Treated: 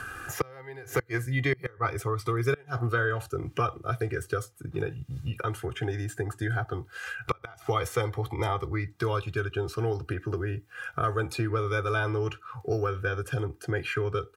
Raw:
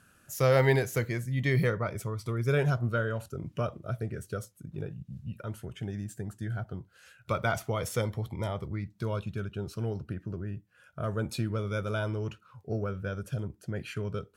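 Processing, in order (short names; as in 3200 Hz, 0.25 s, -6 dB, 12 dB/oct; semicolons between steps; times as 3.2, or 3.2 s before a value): bell 1300 Hz +8.5 dB 1.8 oct; comb 2.5 ms, depth 91%; flipped gate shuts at -12 dBFS, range -29 dB; three-band squash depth 70%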